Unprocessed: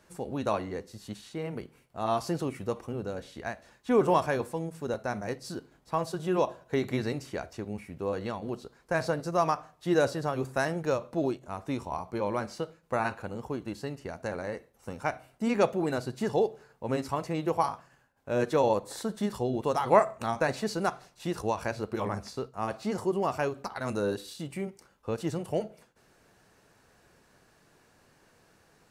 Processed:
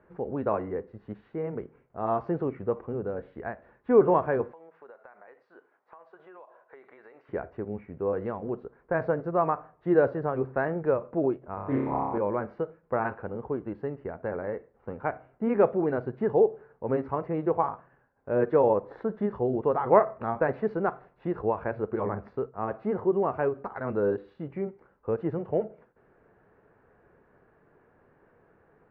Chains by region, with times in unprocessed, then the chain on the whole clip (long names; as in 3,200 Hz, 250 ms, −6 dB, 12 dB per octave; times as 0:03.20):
0:04.52–0:07.29: high-pass filter 850 Hz + downward compressor 8 to 1, threshold −47 dBFS + one half of a high-frequency compander decoder only
0:11.54–0:12.18: parametric band 83 Hz −7.5 dB 0.38 octaves + flutter between parallel walls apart 5.1 metres, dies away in 1.2 s + highs frequency-modulated by the lows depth 0.16 ms
whole clip: low-pass filter 1,800 Hz 24 dB per octave; parametric band 430 Hz +6 dB 0.57 octaves